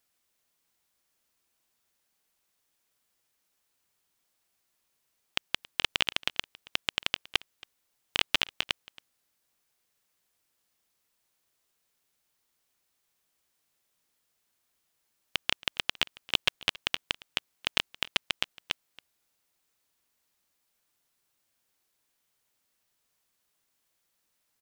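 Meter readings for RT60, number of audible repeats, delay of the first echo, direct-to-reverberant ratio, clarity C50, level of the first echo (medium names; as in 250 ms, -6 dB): no reverb, 1, 275 ms, no reverb, no reverb, -22.0 dB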